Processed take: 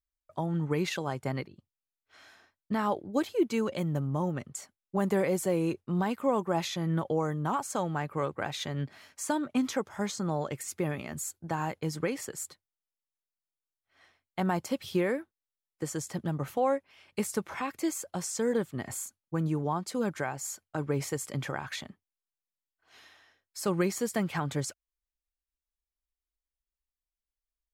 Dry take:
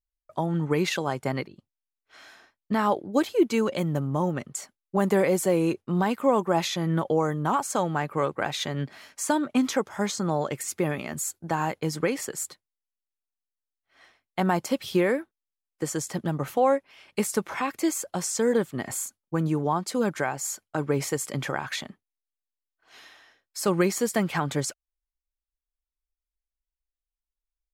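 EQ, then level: peaking EQ 79 Hz +8 dB 1.5 oct; -6.0 dB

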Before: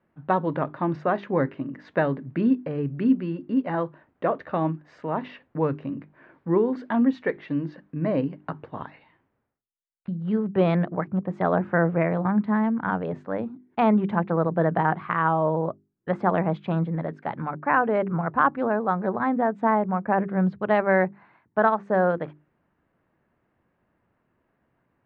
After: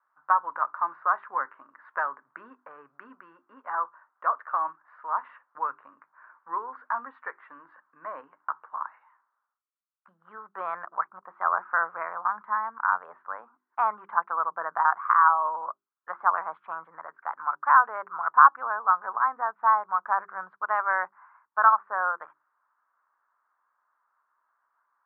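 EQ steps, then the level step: Butterworth band-pass 1.2 kHz, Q 2.5; +7.5 dB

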